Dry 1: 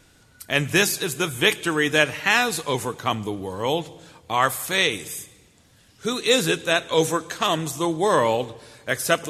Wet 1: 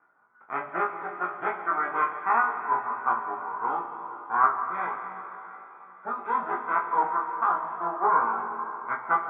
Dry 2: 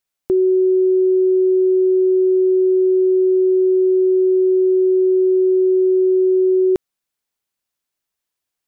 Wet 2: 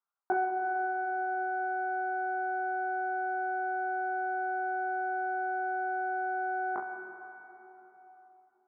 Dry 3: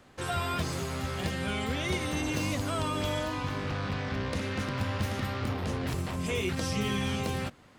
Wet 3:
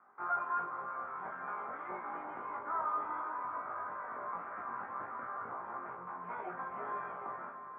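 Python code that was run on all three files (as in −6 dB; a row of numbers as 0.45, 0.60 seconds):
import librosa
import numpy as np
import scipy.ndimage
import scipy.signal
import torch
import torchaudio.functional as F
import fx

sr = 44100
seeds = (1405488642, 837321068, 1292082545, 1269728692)

p1 = fx.lower_of_two(x, sr, delay_ms=0.89)
p2 = scipy.signal.sosfilt(scipy.signal.butter(2, 750.0, 'highpass', fs=sr, output='sos'), p1)
p3 = fx.dereverb_blind(p2, sr, rt60_s=1.2)
p4 = scipy.signal.sosfilt(scipy.signal.ellip(4, 1.0, 70, 1500.0, 'lowpass', fs=sr, output='sos'), p3)
p5 = fx.doubler(p4, sr, ms=17.0, db=-5.0)
p6 = p5 + fx.room_early_taps(p5, sr, ms=(22, 34, 66), db=(-3.5, -9.5, -11.0), dry=0)
y = fx.rev_plate(p6, sr, seeds[0], rt60_s=3.8, hf_ratio=0.95, predelay_ms=85, drr_db=6.5)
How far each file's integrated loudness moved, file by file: −5.5, −17.5, −8.0 LU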